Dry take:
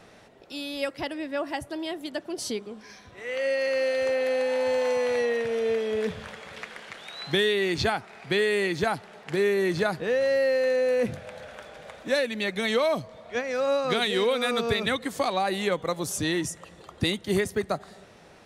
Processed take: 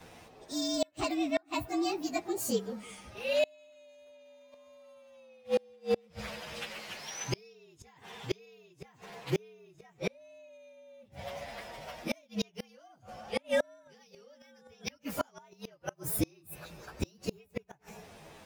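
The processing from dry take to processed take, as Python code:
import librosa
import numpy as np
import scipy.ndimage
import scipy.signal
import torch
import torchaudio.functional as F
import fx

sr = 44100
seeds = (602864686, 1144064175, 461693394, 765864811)

y = fx.partial_stretch(x, sr, pct=115)
y = fx.gate_flip(y, sr, shuts_db=-21.0, range_db=-34)
y = y * 10.0 ** (3.5 / 20.0)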